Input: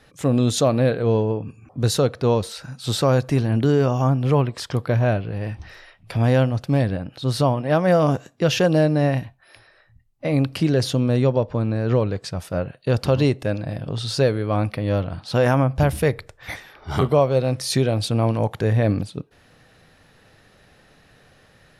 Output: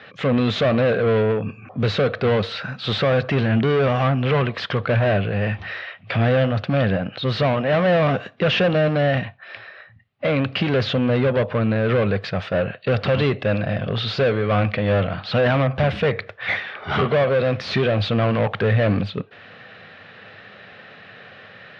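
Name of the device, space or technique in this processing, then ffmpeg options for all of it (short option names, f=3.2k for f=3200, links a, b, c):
overdrive pedal into a guitar cabinet: -filter_complex "[0:a]asplit=2[a][b];[b]highpass=f=720:p=1,volume=26dB,asoftclip=type=tanh:threshold=-6dB[c];[a][c]amix=inputs=2:normalize=0,lowpass=f=6.2k:p=1,volume=-6dB,highpass=84,equalizer=f=100:t=q:w=4:g=9,equalizer=f=200:t=q:w=4:g=6,equalizer=f=310:t=q:w=4:g=-7,equalizer=f=910:t=q:w=4:g=-7,lowpass=f=3.4k:w=0.5412,lowpass=f=3.4k:w=1.3066,volume=-4.5dB"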